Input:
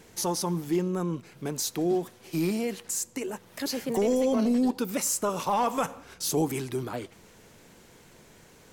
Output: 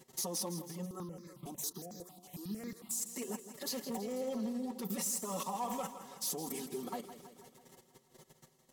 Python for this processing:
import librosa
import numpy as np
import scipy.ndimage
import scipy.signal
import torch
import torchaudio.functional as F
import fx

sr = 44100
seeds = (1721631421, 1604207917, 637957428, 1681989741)

y = fx.peak_eq(x, sr, hz=2400.0, db=-10.5, octaves=0.26)
y = fx.level_steps(y, sr, step_db=18)
y = fx.env_flanger(y, sr, rest_ms=8.2, full_db=-19.5)
y = 10.0 ** (-32.0 / 20.0) * (np.abs((y / 10.0 ** (-32.0 / 20.0) + 3.0) % 4.0 - 2.0) - 1.0)
y = fx.highpass(y, sr, hz=110.0, slope=6)
y = fx.high_shelf(y, sr, hz=10000.0, db=7.0)
y = fx.notch(y, sr, hz=1500.0, q=5.3)
y = y + 0.49 * np.pad(y, (int(5.3 * sr / 1000.0), 0))[:len(y)]
y = fx.echo_feedback(y, sr, ms=163, feedback_pct=60, wet_db=-12)
y = fx.phaser_held(y, sr, hz=11.0, low_hz=470.0, high_hz=2900.0, at=(0.85, 3.0), fade=0.02)